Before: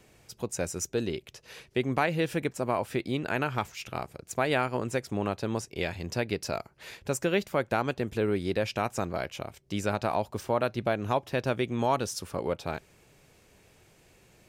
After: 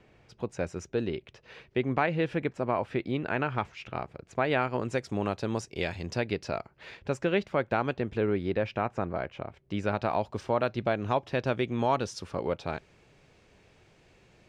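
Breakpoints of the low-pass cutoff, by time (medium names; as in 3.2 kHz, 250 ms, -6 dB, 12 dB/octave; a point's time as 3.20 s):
4.45 s 2.9 kHz
5.13 s 7 kHz
5.99 s 7 kHz
6.52 s 3.4 kHz
8.00 s 3.4 kHz
8.92 s 2 kHz
9.46 s 2 kHz
10.25 s 4.8 kHz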